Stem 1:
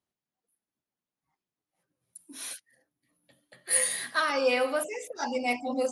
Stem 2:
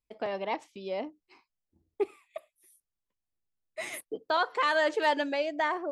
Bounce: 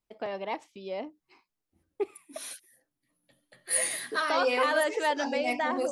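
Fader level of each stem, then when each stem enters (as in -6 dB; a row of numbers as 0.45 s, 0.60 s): -2.5 dB, -1.5 dB; 0.00 s, 0.00 s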